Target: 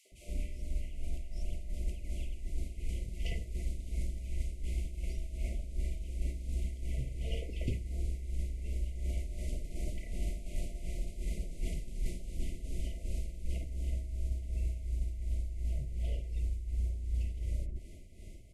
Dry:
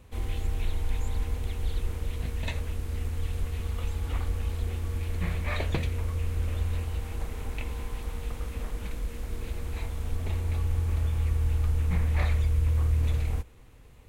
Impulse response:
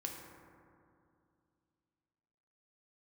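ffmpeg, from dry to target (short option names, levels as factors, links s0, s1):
-filter_complex "[0:a]equalizer=f=7200:t=o:w=0.32:g=-4,acrossover=split=580|3100[s0][s1][s2];[s1]adelay=40[s3];[s0]adelay=90[s4];[s4][s3][s2]amix=inputs=3:normalize=0,areverse,acompressor=threshold=0.02:ratio=16,areverse,tremolo=f=3.6:d=0.61,afftfilt=real='re*(1-between(b*sr/4096,920,2600))':imag='im*(1-between(b*sr/4096,920,2600))':win_size=4096:overlap=0.75,asetrate=33516,aresample=44100,volume=2"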